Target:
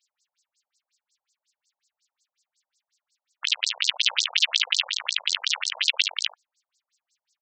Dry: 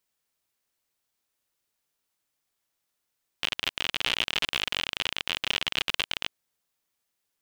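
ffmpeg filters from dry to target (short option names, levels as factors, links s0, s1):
-af "aecho=1:1:53|73:0.355|0.473,crystalizer=i=8:c=0,afftfilt=real='re*between(b*sr/1024,650*pow(6000/650,0.5+0.5*sin(2*PI*5.5*pts/sr))/1.41,650*pow(6000/650,0.5+0.5*sin(2*PI*5.5*pts/sr))*1.41)':imag='im*between(b*sr/1024,650*pow(6000/650,0.5+0.5*sin(2*PI*5.5*pts/sr))/1.41,650*pow(6000/650,0.5+0.5*sin(2*PI*5.5*pts/sr))*1.41)':win_size=1024:overlap=0.75,volume=0.891"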